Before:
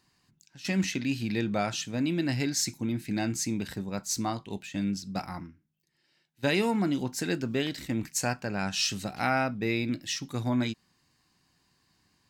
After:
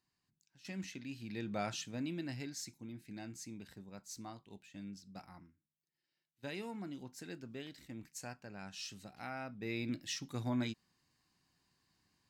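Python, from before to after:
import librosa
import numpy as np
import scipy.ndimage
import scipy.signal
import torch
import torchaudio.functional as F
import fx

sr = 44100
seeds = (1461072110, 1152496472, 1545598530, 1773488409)

y = fx.gain(x, sr, db=fx.line((1.18, -16.0), (1.68, -8.0), (2.74, -17.5), (9.37, -17.5), (9.89, -8.0)))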